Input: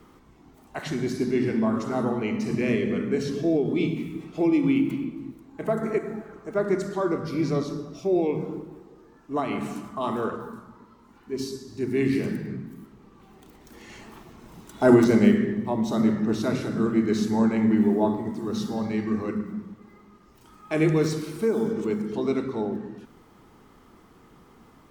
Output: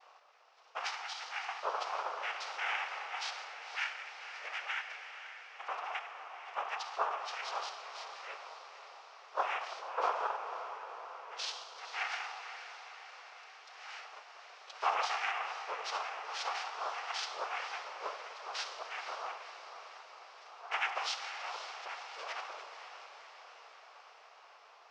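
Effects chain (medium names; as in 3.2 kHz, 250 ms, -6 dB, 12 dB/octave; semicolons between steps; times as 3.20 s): steep high-pass 1 kHz 96 dB/octave; noise-vocoded speech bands 6; formant shift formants -6 st; echo that smears into a reverb 513 ms, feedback 64%, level -10 dB; trim +1 dB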